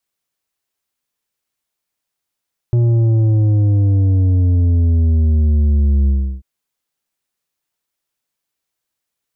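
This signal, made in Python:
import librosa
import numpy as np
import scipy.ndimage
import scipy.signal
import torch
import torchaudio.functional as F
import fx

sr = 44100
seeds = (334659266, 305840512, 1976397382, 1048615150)

y = fx.sub_drop(sr, level_db=-11, start_hz=120.0, length_s=3.69, drive_db=7.5, fade_s=0.34, end_hz=65.0)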